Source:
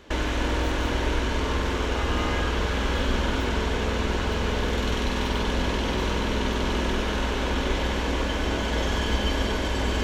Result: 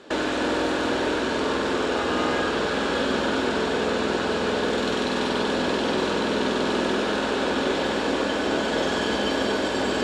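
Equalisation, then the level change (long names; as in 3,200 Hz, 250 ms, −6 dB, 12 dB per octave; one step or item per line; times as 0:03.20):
loudspeaker in its box 240–9,300 Hz, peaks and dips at 1,000 Hz −5 dB, 2,100 Hz −8 dB, 3,000 Hz −5 dB, 6,100 Hz −8 dB
+6.0 dB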